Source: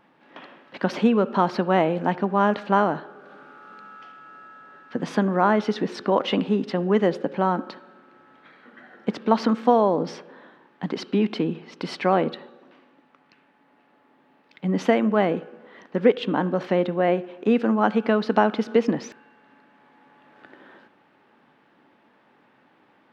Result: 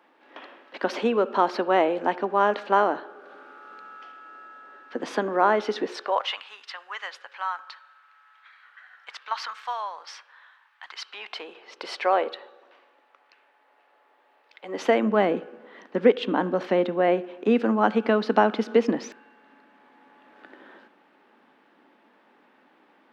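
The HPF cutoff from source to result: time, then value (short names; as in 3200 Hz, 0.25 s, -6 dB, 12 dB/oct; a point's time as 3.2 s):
HPF 24 dB/oct
5.82 s 290 Hz
6.4 s 1100 Hz
10.97 s 1100 Hz
11.72 s 450 Hz
14.65 s 450 Hz
15.06 s 210 Hz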